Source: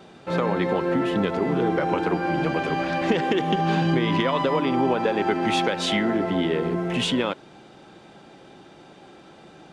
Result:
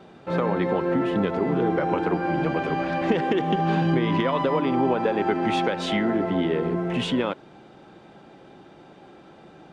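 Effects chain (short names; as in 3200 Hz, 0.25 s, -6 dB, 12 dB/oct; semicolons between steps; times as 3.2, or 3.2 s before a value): high shelf 3300 Hz -10 dB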